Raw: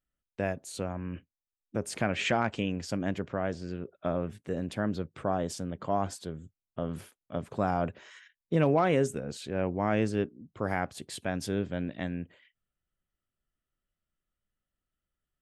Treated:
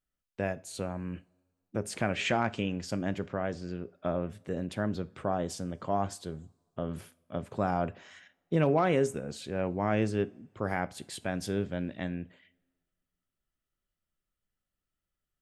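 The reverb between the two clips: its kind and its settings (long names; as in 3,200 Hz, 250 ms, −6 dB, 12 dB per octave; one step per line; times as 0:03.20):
coupled-rooms reverb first 0.31 s, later 1.6 s, from −21 dB, DRR 14.5 dB
level −1 dB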